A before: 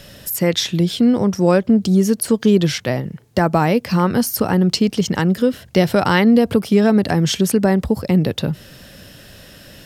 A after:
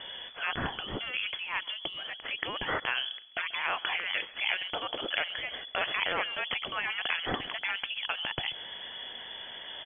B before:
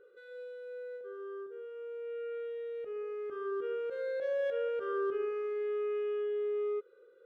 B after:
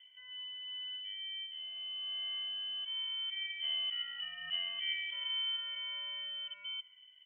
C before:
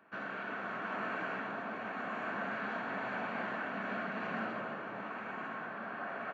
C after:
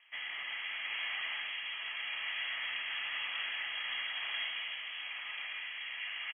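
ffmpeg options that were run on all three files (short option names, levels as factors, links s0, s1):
-filter_complex "[0:a]lowpass=f=3000:t=q:w=0.5098,lowpass=f=3000:t=q:w=0.6013,lowpass=f=3000:t=q:w=0.9,lowpass=f=3000:t=q:w=2.563,afreqshift=-3500,afftfilt=real='re*lt(hypot(re,im),0.224)':imag='im*lt(hypot(re,im),0.224)':win_size=1024:overlap=0.75,asplit=2[s0][s1];[s1]adelay=136,lowpass=f=2000:p=1,volume=0.112,asplit=2[s2][s3];[s3]adelay=136,lowpass=f=2000:p=1,volume=0.22[s4];[s0][s2][s4]amix=inputs=3:normalize=0"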